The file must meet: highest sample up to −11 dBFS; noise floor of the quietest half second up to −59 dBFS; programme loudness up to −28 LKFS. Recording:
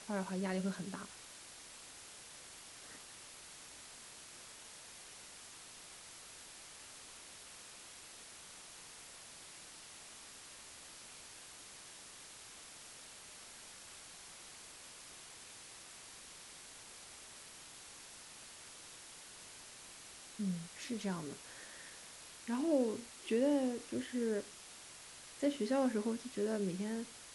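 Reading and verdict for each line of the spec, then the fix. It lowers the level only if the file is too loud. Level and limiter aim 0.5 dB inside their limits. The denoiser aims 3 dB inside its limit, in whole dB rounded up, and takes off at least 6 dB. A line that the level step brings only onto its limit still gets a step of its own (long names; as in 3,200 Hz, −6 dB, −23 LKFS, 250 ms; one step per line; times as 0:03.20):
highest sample −21.5 dBFS: in spec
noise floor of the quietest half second −54 dBFS: out of spec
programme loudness −43.5 LKFS: in spec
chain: broadband denoise 8 dB, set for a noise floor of −54 dBFS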